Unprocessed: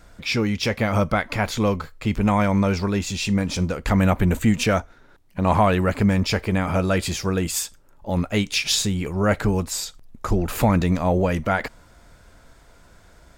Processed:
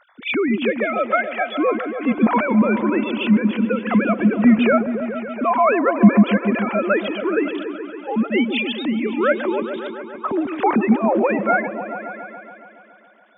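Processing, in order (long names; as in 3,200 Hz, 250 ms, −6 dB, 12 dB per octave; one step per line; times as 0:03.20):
three sine waves on the formant tracks
echo whose low-pass opens from repeat to repeat 140 ms, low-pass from 400 Hz, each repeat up 1 octave, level −6 dB
level +1.5 dB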